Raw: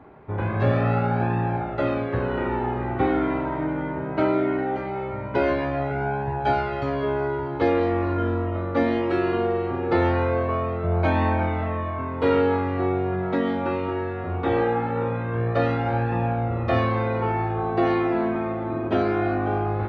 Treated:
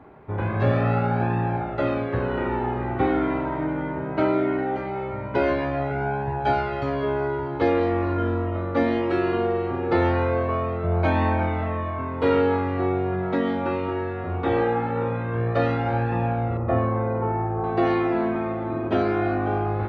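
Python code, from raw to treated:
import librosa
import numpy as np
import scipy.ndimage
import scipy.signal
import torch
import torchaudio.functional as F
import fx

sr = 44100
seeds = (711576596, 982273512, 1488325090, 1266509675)

y = fx.lowpass(x, sr, hz=1200.0, slope=12, at=(16.57, 17.64))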